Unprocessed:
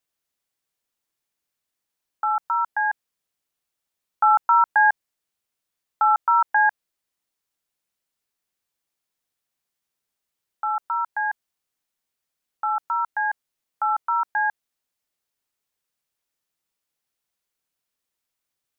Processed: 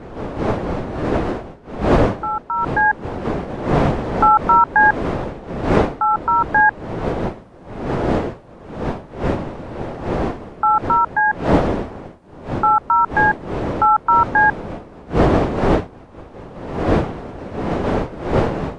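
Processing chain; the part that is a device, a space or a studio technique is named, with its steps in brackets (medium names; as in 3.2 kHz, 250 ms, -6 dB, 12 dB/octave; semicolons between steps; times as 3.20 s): smartphone video outdoors (wind noise 540 Hz -27 dBFS; level rider gain up to 11.5 dB; trim -1 dB; AAC 48 kbps 22.05 kHz)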